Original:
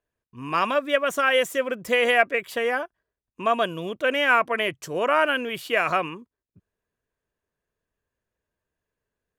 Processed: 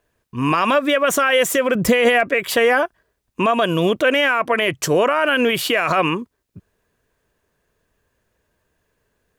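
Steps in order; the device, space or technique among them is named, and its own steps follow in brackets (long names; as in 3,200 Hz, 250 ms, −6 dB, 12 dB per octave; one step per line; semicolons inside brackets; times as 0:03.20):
loud club master (downward compressor 3 to 1, threshold −23 dBFS, peak gain reduction 8 dB; hard clipping −14 dBFS, distortion −45 dB; boost into a limiter +22.5 dB)
0:01.75–0:02.29: low-shelf EQ 240 Hz +9.5 dB
level −7 dB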